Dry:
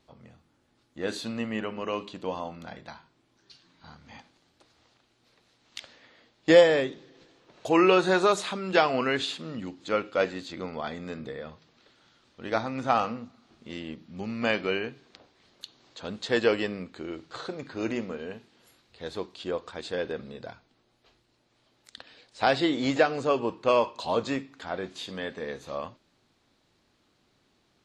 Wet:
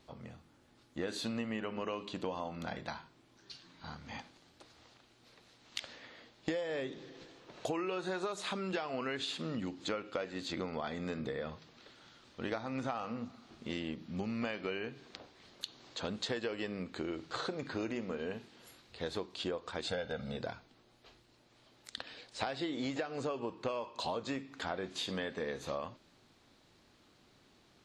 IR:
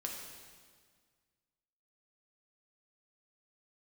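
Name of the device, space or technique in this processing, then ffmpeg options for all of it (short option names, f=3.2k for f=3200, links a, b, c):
serial compression, leveller first: -filter_complex "[0:a]asettb=1/sr,asplit=3[a][b][c];[a]atrim=end=19.874[d];[b]atrim=start=19.87:end=20.37,asetpts=PTS-STARTPTS,afade=t=in:d=0.004:c=qsin,afade=t=out:st=0.496:d=0.004:c=qsin,aecho=1:1:1.4:0.89,atrim=end_sample=22050[e];[c]atrim=start=20.366[f];[d][e]acrossfade=d=0.004:c1=hsin:c2=qsin[g];[g][f]acrossfade=d=0.004:c1=qsin:c2=hsin,acompressor=threshold=-26dB:ratio=2,acompressor=threshold=-37dB:ratio=8,volume=3dB"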